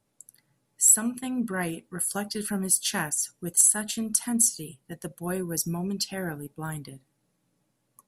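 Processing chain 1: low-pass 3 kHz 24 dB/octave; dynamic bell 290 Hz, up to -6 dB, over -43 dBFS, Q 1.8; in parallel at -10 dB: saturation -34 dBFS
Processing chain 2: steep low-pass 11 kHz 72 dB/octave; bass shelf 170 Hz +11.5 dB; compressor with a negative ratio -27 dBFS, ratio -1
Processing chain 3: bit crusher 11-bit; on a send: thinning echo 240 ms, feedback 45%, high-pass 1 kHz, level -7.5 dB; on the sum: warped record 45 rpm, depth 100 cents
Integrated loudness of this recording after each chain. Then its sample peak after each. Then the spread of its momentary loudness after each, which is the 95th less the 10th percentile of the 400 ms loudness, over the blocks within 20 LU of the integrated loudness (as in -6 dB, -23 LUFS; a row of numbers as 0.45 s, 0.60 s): -34.0 LUFS, -28.5 LUFS, -24.5 LUFS; -16.0 dBFS, -12.0 dBFS, -6.0 dBFS; 9 LU, 7 LU, 16 LU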